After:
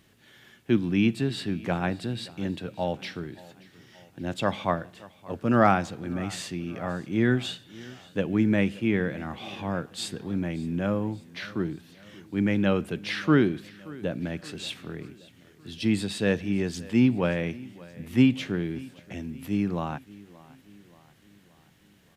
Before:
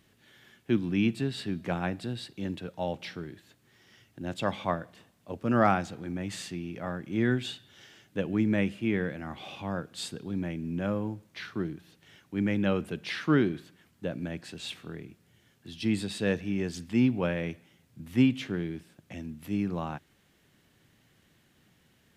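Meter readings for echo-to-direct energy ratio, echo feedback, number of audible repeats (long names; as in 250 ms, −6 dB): −19.5 dB, 54%, 3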